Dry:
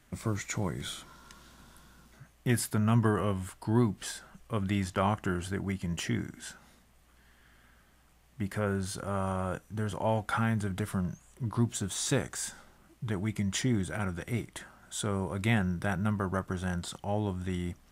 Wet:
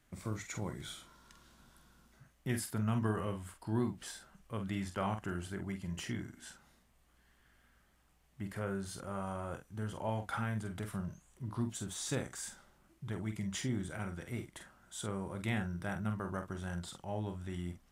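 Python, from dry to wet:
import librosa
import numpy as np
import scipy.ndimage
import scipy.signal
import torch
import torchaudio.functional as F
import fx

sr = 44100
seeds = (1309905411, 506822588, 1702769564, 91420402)

y = fx.doubler(x, sr, ms=46.0, db=-7.5)
y = y * 10.0 ** (-8.0 / 20.0)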